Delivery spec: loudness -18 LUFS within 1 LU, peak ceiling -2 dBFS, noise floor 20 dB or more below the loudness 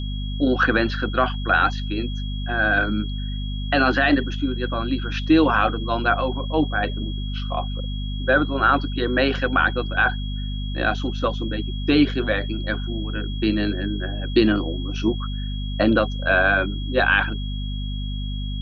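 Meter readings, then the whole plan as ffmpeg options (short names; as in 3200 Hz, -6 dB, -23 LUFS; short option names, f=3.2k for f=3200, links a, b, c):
hum 50 Hz; harmonics up to 250 Hz; hum level -25 dBFS; steady tone 3300 Hz; tone level -37 dBFS; loudness -22.5 LUFS; peak -5.0 dBFS; loudness target -18.0 LUFS
-> -af "bandreject=f=50:t=h:w=6,bandreject=f=100:t=h:w=6,bandreject=f=150:t=h:w=6,bandreject=f=200:t=h:w=6,bandreject=f=250:t=h:w=6"
-af "bandreject=f=3.3k:w=30"
-af "volume=4.5dB,alimiter=limit=-2dB:level=0:latency=1"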